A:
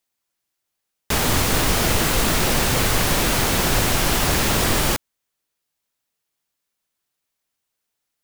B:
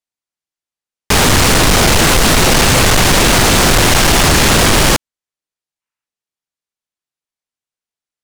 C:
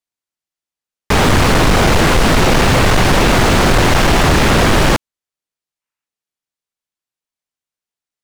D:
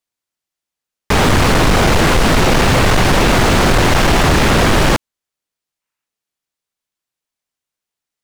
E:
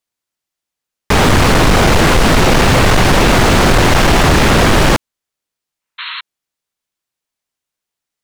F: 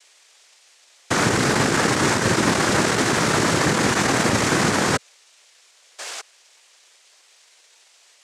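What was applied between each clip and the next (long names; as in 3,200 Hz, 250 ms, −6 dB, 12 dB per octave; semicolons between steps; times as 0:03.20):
gain on a spectral selection 0:05.81–0:06.06, 820–3,000 Hz +7 dB; low-pass filter 9,700 Hz 12 dB per octave; leveller curve on the samples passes 5
slew-rate limiting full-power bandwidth 580 Hz
brickwall limiter −12 dBFS, peak gain reduction 5.5 dB; level +4.5 dB
sound drawn into the spectrogram noise, 0:05.98–0:06.21, 930–4,300 Hz −27 dBFS; level +2 dB
noise in a band 1,600–5,400 Hz −47 dBFS; cochlear-implant simulation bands 3; level −8 dB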